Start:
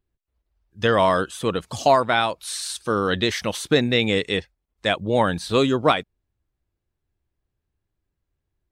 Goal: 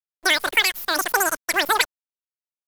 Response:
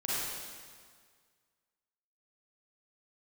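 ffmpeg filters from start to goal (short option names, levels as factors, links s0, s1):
-af "acrusher=bits=6:dc=4:mix=0:aa=0.000001,asetrate=143766,aresample=44100"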